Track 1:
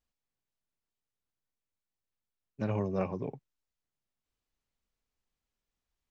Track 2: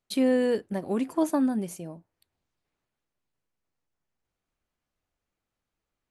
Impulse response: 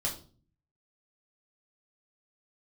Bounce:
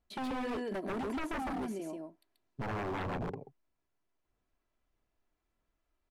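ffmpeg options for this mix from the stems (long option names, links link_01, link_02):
-filter_complex "[0:a]lowpass=1300,aphaser=in_gain=1:out_gain=1:delay=3.2:decay=0.48:speed=1.6:type=sinusoidal,volume=2.5dB,asplit=2[link_01][link_02];[link_02]volume=-12.5dB[link_03];[1:a]highpass=180,acompressor=threshold=-28dB:ratio=2.5,aecho=1:1:3:0.56,volume=-2.5dB,asplit=2[link_04][link_05];[link_05]volume=-3dB[link_06];[link_03][link_06]amix=inputs=2:normalize=0,aecho=0:1:134:1[link_07];[link_01][link_04][link_07]amix=inputs=3:normalize=0,highshelf=frequency=4700:gain=-8,aeval=exprs='0.0282*(abs(mod(val(0)/0.0282+3,4)-2)-1)':channel_layout=same,acrossover=split=2900[link_08][link_09];[link_09]acompressor=threshold=-52dB:ratio=4:attack=1:release=60[link_10];[link_08][link_10]amix=inputs=2:normalize=0"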